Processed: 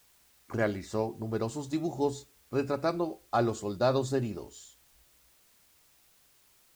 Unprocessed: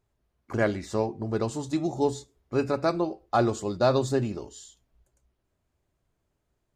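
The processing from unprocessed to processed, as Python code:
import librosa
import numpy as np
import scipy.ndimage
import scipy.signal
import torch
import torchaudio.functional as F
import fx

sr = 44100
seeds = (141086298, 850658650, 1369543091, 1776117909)

y = fx.quant_dither(x, sr, seeds[0], bits=10, dither='triangular')
y = y * librosa.db_to_amplitude(-4.0)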